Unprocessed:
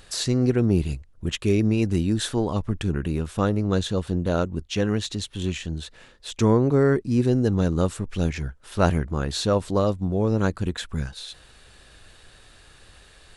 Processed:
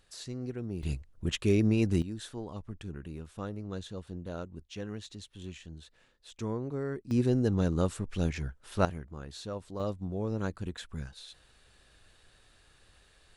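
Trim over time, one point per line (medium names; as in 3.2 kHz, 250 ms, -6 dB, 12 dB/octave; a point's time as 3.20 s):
-17 dB
from 0.83 s -4.5 dB
from 2.02 s -16 dB
from 7.11 s -6 dB
from 8.85 s -17 dB
from 9.80 s -11 dB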